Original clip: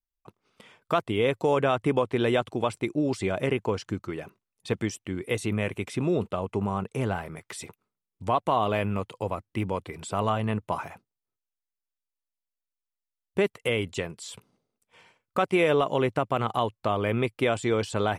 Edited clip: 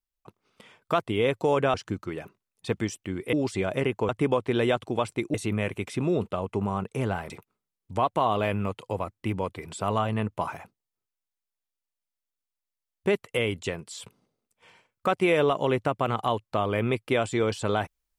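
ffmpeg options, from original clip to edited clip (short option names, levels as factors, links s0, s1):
-filter_complex "[0:a]asplit=6[s0][s1][s2][s3][s4][s5];[s0]atrim=end=1.742[s6];[s1]atrim=start=3.748:end=5.342[s7];[s2]atrim=start=2.988:end=3.752[s8];[s3]atrim=start=1.738:end=2.992[s9];[s4]atrim=start=5.338:end=7.302[s10];[s5]atrim=start=7.608[s11];[s6][s7]acrossfade=d=0.004:c1=hsin:c2=hsin[s12];[s12][s8]acrossfade=d=0.004:c1=hsin:c2=hsin[s13];[s13][s9]acrossfade=d=0.004:c1=hsin:c2=hsin[s14];[s14][s10]acrossfade=d=0.004:c1=hsin:c2=hsin[s15];[s15][s11]acrossfade=d=0.004:c1=hsin:c2=hsin"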